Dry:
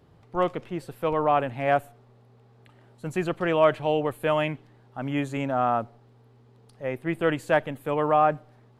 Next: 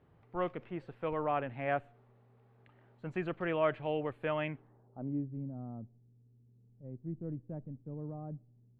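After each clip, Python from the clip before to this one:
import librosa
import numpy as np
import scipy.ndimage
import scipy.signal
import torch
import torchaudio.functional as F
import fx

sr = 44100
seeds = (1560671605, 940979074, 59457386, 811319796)

y = fx.filter_sweep_lowpass(x, sr, from_hz=2300.0, to_hz=200.0, start_s=4.46, end_s=5.29, q=1.1)
y = fx.dynamic_eq(y, sr, hz=890.0, q=0.97, threshold_db=-33.0, ratio=4.0, max_db=-4)
y = y * 10.0 ** (-8.5 / 20.0)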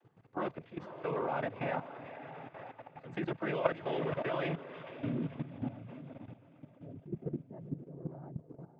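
y = fx.echo_diffused(x, sr, ms=508, feedback_pct=46, wet_db=-9.5)
y = fx.noise_vocoder(y, sr, seeds[0], bands=16)
y = fx.level_steps(y, sr, step_db=13)
y = y * 10.0 ** (5.0 / 20.0)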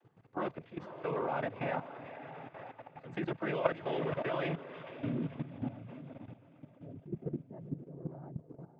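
y = x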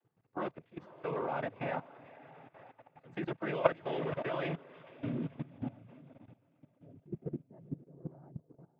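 y = fx.upward_expand(x, sr, threshold_db=-55.0, expansion=1.5)
y = y * 10.0 ** (3.5 / 20.0)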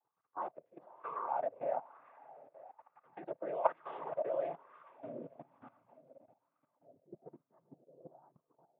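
y = fx.wah_lfo(x, sr, hz=1.1, low_hz=550.0, high_hz=1200.0, q=4.9)
y = y * 10.0 ** (6.0 / 20.0)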